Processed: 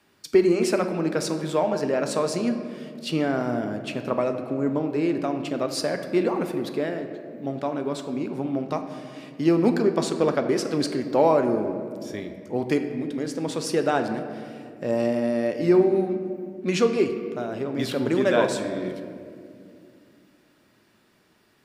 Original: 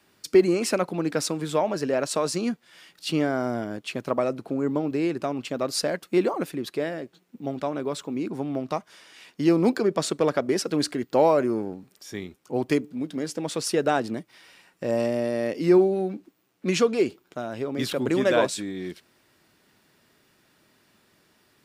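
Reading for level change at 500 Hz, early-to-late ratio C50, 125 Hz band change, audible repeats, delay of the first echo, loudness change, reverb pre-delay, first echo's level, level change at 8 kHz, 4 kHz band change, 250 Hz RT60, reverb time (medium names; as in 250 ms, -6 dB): +1.0 dB, 8.5 dB, +1.5 dB, no echo, no echo, +0.5 dB, 5 ms, no echo, -3.0 dB, -1.5 dB, 3.6 s, 2.4 s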